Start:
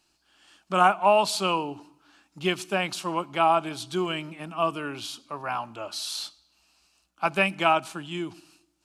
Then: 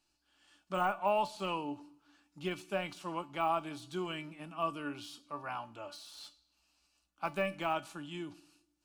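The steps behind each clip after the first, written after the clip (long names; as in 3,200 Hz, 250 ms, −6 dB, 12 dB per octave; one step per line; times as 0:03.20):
de-essing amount 90%
low-shelf EQ 100 Hz +6 dB
tuned comb filter 290 Hz, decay 0.23 s, harmonics all, mix 70%
level −1.5 dB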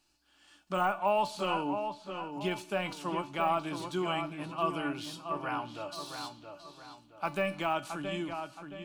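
in parallel at −1.5 dB: brickwall limiter −30.5 dBFS, peak gain reduction 11 dB
on the sum: feedback echo with a low-pass in the loop 671 ms, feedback 40%, low-pass 2,900 Hz, level −7 dB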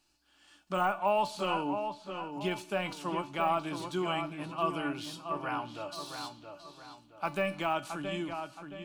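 no processing that can be heard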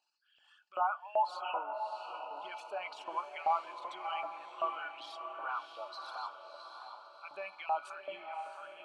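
spectral envelope exaggerated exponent 2
auto-filter high-pass saw up 2.6 Hz 650–2,700 Hz
feedback delay with all-pass diffusion 643 ms, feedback 46%, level −7 dB
level −7 dB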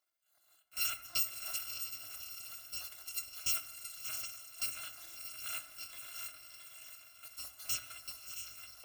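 samples in bit-reversed order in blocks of 256 samples
on a send at −7.5 dB: convolution reverb RT60 1.5 s, pre-delay 4 ms
on the sum: level −3.5 dB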